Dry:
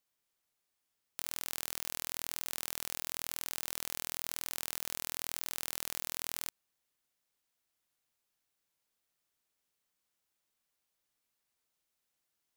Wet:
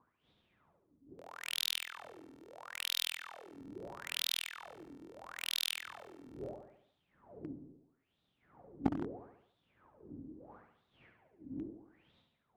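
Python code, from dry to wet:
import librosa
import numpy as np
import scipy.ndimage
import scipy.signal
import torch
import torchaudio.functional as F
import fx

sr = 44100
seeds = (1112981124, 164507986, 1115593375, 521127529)

p1 = fx.dmg_wind(x, sr, seeds[0], corner_hz=130.0, level_db=-40.0)
p2 = fx.wah_lfo(p1, sr, hz=0.76, low_hz=270.0, high_hz=3700.0, q=11.0)
p3 = fx.echo_feedback(p2, sr, ms=71, feedback_pct=50, wet_db=-6.5)
p4 = fx.fuzz(p3, sr, gain_db=37.0, gate_db=-44.0)
p5 = p3 + (p4 * librosa.db_to_amplitude(-7.0))
y = p5 * librosa.db_to_amplitude(10.5)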